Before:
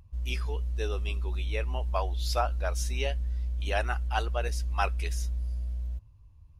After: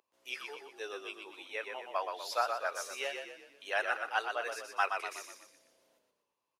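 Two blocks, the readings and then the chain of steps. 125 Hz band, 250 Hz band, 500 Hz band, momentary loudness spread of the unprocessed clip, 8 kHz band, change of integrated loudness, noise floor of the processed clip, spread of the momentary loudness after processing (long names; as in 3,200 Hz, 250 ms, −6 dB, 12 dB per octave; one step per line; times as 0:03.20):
below −40 dB, −10.5 dB, −4.0 dB, 5 LU, −4.5 dB, −5.0 dB, −85 dBFS, 13 LU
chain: high-pass filter 400 Hz 24 dB per octave
dynamic equaliser 1,600 Hz, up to +8 dB, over −46 dBFS, Q 1.1
echo with shifted repeats 122 ms, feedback 45%, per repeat −32 Hz, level −5.5 dB
level −6 dB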